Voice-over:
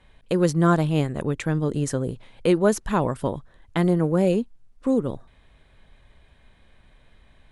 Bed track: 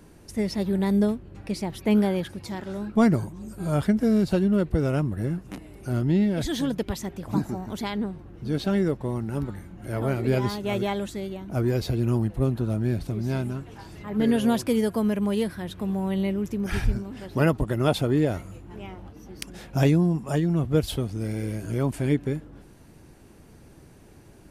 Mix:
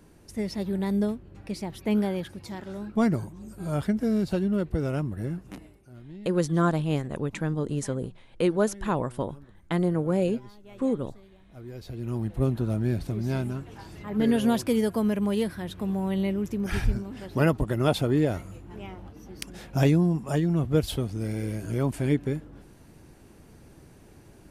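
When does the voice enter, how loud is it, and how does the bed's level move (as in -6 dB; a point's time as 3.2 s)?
5.95 s, -4.5 dB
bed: 5.65 s -4 dB
5.89 s -21.5 dB
11.5 s -21.5 dB
12.4 s -1 dB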